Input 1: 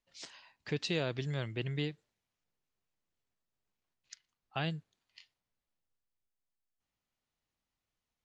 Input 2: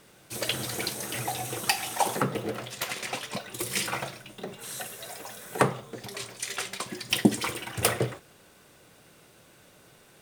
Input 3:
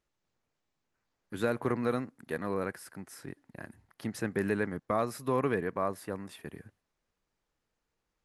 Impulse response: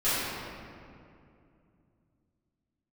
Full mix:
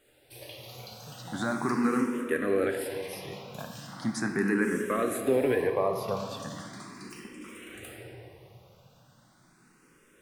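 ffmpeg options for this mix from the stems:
-filter_complex "[0:a]adelay=350,volume=-11.5dB[link_01];[1:a]acompressor=threshold=-35dB:ratio=12,volume=-12dB,asplit=2[link_02][link_03];[link_03]volume=-5dB[link_04];[2:a]highpass=frequency=170:poles=1,alimiter=limit=-22dB:level=0:latency=1,acontrast=90,volume=0dB,asplit=2[link_05][link_06];[link_06]volume=-17dB[link_07];[3:a]atrim=start_sample=2205[link_08];[link_04][link_07]amix=inputs=2:normalize=0[link_09];[link_09][link_08]afir=irnorm=-1:irlink=0[link_10];[link_01][link_02][link_05][link_10]amix=inputs=4:normalize=0,asplit=2[link_11][link_12];[link_12]afreqshift=0.38[link_13];[link_11][link_13]amix=inputs=2:normalize=1"

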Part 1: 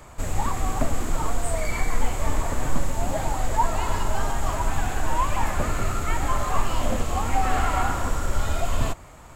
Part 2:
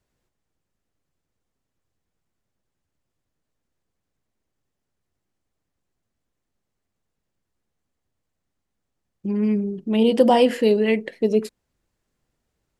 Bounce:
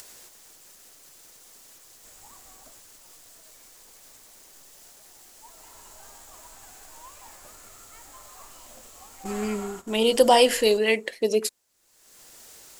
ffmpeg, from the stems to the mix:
ffmpeg -i stem1.wav -i stem2.wav -filter_complex "[0:a]adelay=1850,volume=-1dB,afade=type=out:start_time=2.59:duration=0.27:silence=0.316228,afade=type=in:start_time=5.31:duration=0.57:silence=0.237137,afade=type=out:start_time=9.06:duration=0.75:silence=0.421697[link_01];[1:a]acompressor=mode=upward:threshold=-32dB:ratio=2.5,lowshelf=frequency=490:gain=-6,volume=2.5dB,asplit=2[link_02][link_03];[link_03]apad=whole_len=494022[link_04];[link_01][link_04]sidechaingate=range=-12dB:threshold=-35dB:ratio=16:detection=peak[link_05];[link_05][link_02]amix=inputs=2:normalize=0,bass=frequency=250:gain=-12,treble=frequency=4000:gain=12" out.wav

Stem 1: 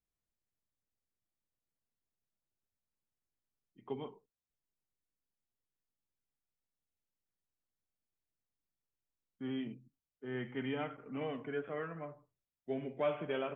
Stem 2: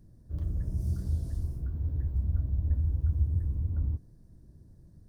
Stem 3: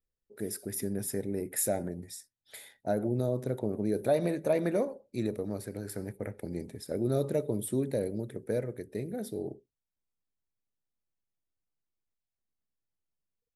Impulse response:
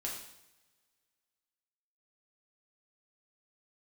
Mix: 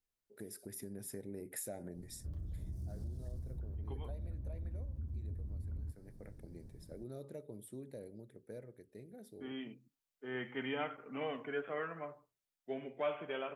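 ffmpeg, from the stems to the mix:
-filter_complex "[0:a]lowshelf=frequency=280:gain=-11.5,volume=0dB[link_01];[1:a]asoftclip=type=tanh:threshold=-24.5dB,adelay=1950,volume=-3.5dB[link_02];[2:a]volume=-8dB,afade=type=out:start_time=2.09:duration=0.63:silence=0.251189,asplit=2[link_03][link_04];[link_04]apad=whole_len=597873[link_05];[link_01][link_05]sidechaincompress=threshold=-52dB:ratio=8:attack=10:release=1280[link_06];[link_02][link_03]amix=inputs=2:normalize=0,acompressor=threshold=-44dB:ratio=5,volume=0dB[link_07];[link_06][link_07]amix=inputs=2:normalize=0,dynaudnorm=framelen=120:gausssize=17:maxgain=3dB"

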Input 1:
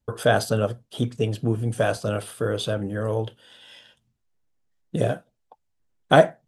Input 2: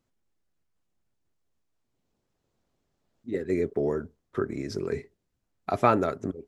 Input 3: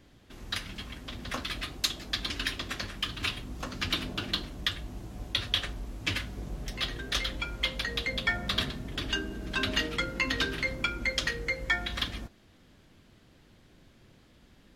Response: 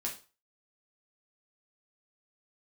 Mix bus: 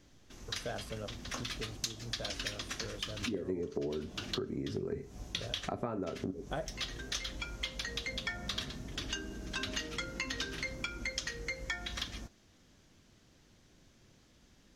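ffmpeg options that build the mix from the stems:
-filter_complex "[0:a]adelay=400,volume=-19.5dB[link_01];[1:a]tiltshelf=frequency=970:gain=6.5,acompressor=threshold=-32dB:ratio=2,volume=-1.5dB,asplit=3[link_02][link_03][link_04];[link_03]volume=-6.5dB[link_05];[2:a]equalizer=frequency=6100:width=2:gain=11,volume=-5.5dB[link_06];[link_04]apad=whole_len=650866[link_07];[link_06][link_07]sidechaincompress=threshold=-43dB:ratio=3:attack=9.4:release=214[link_08];[3:a]atrim=start_sample=2205[link_09];[link_05][link_09]afir=irnorm=-1:irlink=0[link_10];[link_01][link_02][link_08][link_10]amix=inputs=4:normalize=0,acompressor=threshold=-34dB:ratio=4"

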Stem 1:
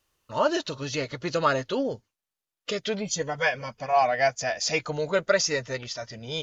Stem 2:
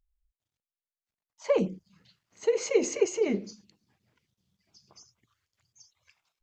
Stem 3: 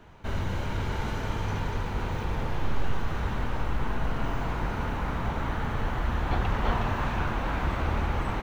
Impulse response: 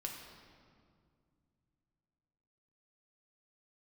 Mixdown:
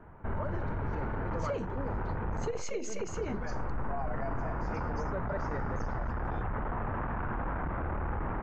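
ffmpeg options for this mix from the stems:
-filter_complex "[0:a]volume=-11dB,asplit=2[link_01][link_02];[link_02]volume=-24dB[link_03];[1:a]volume=-5dB[link_04];[2:a]aeval=exprs='clip(val(0),-1,0.0282)':channel_layout=same,volume=0dB[link_05];[link_01][link_05]amix=inputs=2:normalize=0,lowpass=frequency=1700:width=0.5412,lowpass=frequency=1700:width=1.3066,alimiter=level_in=2dB:limit=-24dB:level=0:latency=1:release=15,volume=-2dB,volume=0dB[link_06];[3:a]atrim=start_sample=2205[link_07];[link_03][link_07]afir=irnorm=-1:irlink=0[link_08];[link_04][link_06][link_08]amix=inputs=3:normalize=0,alimiter=level_in=1dB:limit=-24dB:level=0:latency=1:release=252,volume=-1dB"

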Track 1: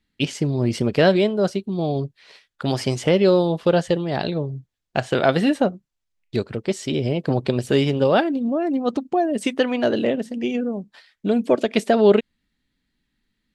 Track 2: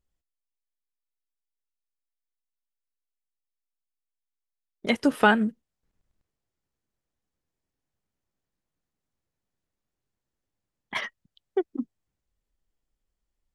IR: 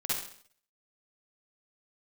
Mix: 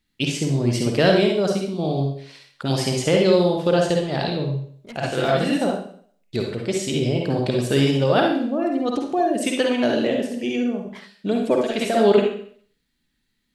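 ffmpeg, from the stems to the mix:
-filter_complex "[0:a]volume=-6dB,asplit=2[link_01][link_02];[link_02]volume=-3dB[link_03];[1:a]highshelf=frequency=2100:gain=-6,asoftclip=type=tanh:threshold=-24dB,volume=-10.5dB,asplit=2[link_04][link_05];[link_05]apad=whole_len=597406[link_06];[link_01][link_06]sidechaincompress=threshold=-58dB:ratio=3:attack=16:release=176[link_07];[2:a]atrim=start_sample=2205[link_08];[link_03][link_08]afir=irnorm=-1:irlink=0[link_09];[link_07][link_04][link_09]amix=inputs=3:normalize=0,highshelf=frequency=4400:gain=8"

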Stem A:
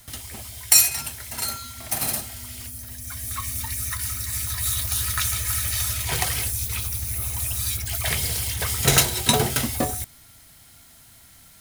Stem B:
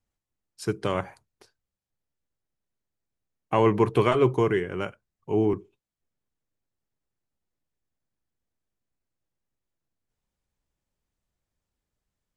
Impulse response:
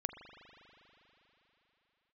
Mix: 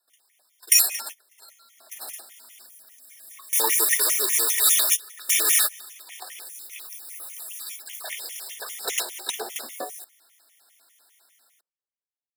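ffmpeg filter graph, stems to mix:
-filter_complex "[0:a]volume=2.5dB[link_01];[1:a]volume=-20dB,asplit=3[link_02][link_03][link_04];[link_03]volume=-19.5dB[link_05];[link_04]apad=whole_len=511892[link_06];[link_01][link_06]sidechaingate=range=-24dB:threshold=-58dB:ratio=16:detection=peak[link_07];[2:a]atrim=start_sample=2205[link_08];[link_05][link_08]afir=irnorm=-1:irlink=0[link_09];[link_07][link_02][link_09]amix=inputs=3:normalize=0,dynaudnorm=framelen=110:gausssize=17:maxgain=15.5dB,highpass=frequency=400:width=0.5412,highpass=frequency=400:width=1.3066,afftfilt=real='re*gt(sin(2*PI*5*pts/sr)*(1-2*mod(floor(b*sr/1024/1800),2)),0)':imag='im*gt(sin(2*PI*5*pts/sr)*(1-2*mod(floor(b*sr/1024/1800),2)),0)':win_size=1024:overlap=0.75"

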